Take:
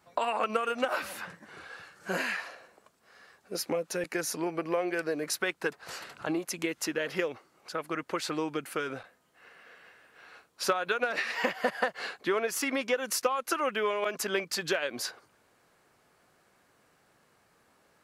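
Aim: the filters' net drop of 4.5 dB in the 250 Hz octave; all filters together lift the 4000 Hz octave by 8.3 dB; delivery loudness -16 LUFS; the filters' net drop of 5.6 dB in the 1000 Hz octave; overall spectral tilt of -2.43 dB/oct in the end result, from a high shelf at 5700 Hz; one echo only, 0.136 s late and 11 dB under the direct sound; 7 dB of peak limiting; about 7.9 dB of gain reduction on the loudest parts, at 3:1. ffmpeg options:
-af "equalizer=f=250:t=o:g=-6,equalizer=f=1k:t=o:g=-8.5,equalizer=f=4k:t=o:g=7.5,highshelf=f=5.7k:g=9,acompressor=threshold=-32dB:ratio=3,alimiter=limit=-24dB:level=0:latency=1,aecho=1:1:136:0.282,volume=20dB"

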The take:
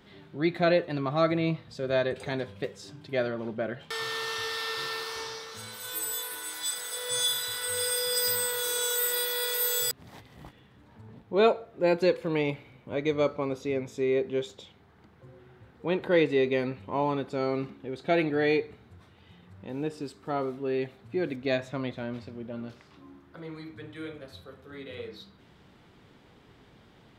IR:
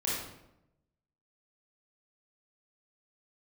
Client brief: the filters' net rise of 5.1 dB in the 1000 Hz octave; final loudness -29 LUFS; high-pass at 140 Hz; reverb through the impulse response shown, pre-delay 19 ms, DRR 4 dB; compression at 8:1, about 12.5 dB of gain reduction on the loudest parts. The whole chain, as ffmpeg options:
-filter_complex "[0:a]highpass=140,equalizer=f=1k:t=o:g=7,acompressor=threshold=-28dB:ratio=8,asplit=2[a][b];[1:a]atrim=start_sample=2205,adelay=19[c];[b][c]afir=irnorm=-1:irlink=0,volume=-10.5dB[d];[a][d]amix=inputs=2:normalize=0,volume=3dB"

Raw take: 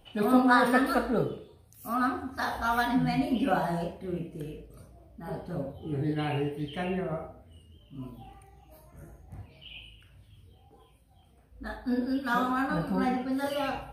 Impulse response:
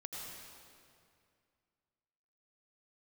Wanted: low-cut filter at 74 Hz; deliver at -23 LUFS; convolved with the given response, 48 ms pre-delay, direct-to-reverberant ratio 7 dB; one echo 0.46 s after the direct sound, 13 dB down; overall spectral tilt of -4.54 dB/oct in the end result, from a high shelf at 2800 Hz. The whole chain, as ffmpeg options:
-filter_complex "[0:a]highpass=74,highshelf=f=2.8k:g=3,aecho=1:1:460:0.224,asplit=2[a][b];[1:a]atrim=start_sample=2205,adelay=48[c];[b][c]afir=irnorm=-1:irlink=0,volume=-6dB[d];[a][d]amix=inputs=2:normalize=0,volume=5dB"

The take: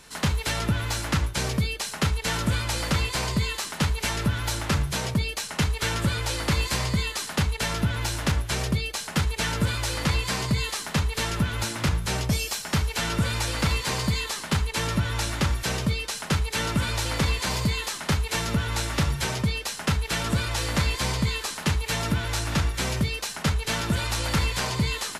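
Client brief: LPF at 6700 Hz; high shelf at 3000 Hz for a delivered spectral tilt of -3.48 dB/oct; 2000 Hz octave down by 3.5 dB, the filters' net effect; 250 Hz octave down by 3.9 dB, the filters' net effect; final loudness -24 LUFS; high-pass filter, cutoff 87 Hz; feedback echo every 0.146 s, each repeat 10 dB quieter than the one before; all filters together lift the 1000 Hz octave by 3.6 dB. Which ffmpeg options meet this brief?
-af "highpass=87,lowpass=6.7k,equalizer=f=250:t=o:g=-6,equalizer=f=1k:t=o:g=6.5,equalizer=f=2k:t=o:g=-8.5,highshelf=f=3k:g=4,aecho=1:1:146|292|438|584:0.316|0.101|0.0324|0.0104,volume=3.5dB"

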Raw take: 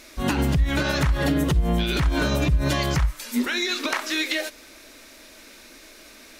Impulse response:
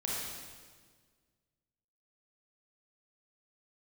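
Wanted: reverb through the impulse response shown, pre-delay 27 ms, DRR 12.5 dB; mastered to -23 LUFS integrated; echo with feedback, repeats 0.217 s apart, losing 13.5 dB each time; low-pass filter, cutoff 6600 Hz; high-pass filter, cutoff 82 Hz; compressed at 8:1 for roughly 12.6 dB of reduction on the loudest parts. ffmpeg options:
-filter_complex "[0:a]highpass=82,lowpass=6.6k,acompressor=threshold=-32dB:ratio=8,aecho=1:1:217|434:0.211|0.0444,asplit=2[a][b];[1:a]atrim=start_sample=2205,adelay=27[c];[b][c]afir=irnorm=-1:irlink=0,volume=-17dB[d];[a][d]amix=inputs=2:normalize=0,volume=13dB"

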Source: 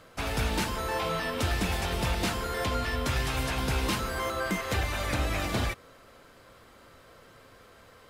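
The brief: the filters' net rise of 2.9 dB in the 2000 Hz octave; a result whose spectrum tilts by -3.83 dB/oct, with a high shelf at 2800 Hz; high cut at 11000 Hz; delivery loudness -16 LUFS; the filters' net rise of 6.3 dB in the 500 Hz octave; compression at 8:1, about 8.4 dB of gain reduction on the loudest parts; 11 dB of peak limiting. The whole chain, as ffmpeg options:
-af "lowpass=11k,equalizer=f=500:t=o:g=7.5,equalizer=f=2k:t=o:g=5.5,highshelf=f=2.8k:g=-6,acompressor=threshold=-31dB:ratio=8,volume=26.5dB,alimiter=limit=-6.5dB:level=0:latency=1"

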